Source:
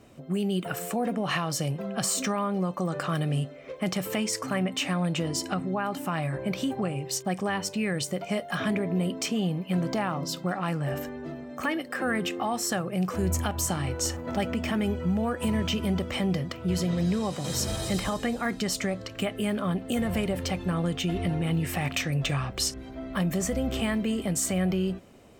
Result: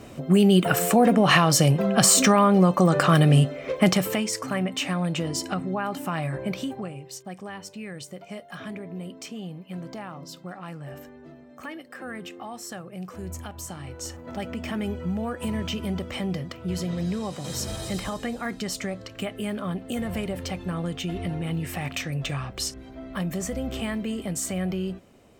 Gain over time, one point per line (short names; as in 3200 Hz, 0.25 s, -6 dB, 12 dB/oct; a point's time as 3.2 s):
3.84 s +10.5 dB
4.25 s +1 dB
6.46 s +1 dB
7.12 s -9 dB
13.75 s -9 dB
14.79 s -2 dB